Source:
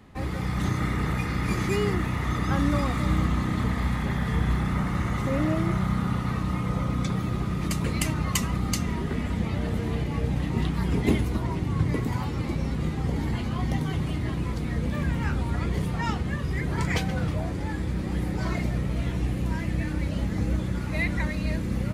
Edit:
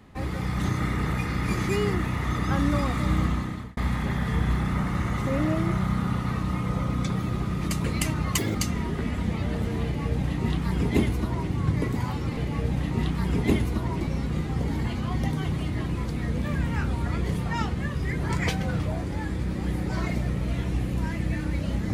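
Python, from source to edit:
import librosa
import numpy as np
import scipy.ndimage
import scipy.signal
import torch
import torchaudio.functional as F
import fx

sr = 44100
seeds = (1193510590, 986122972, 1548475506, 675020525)

y = fx.edit(x, sr, fx.fade_out_span(start_s=3.28, length_s=0.49),
    fx.speed_span(start_s=8.38, length_s=0.29, speed=1.72),
    fx.duplicate(start_s=9.96, length_s=1.64, to_s=12.49), tone=tone)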